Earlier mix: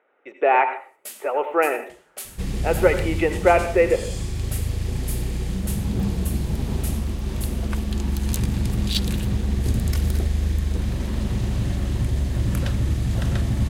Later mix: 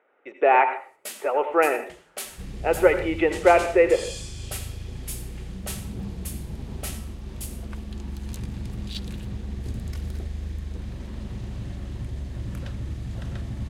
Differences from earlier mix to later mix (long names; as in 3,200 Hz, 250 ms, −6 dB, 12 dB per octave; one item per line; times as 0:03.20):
first sound +5.0 dB
second sound −10.0 dB
master: add high-shelf EQ 9,200 Hz −10 dB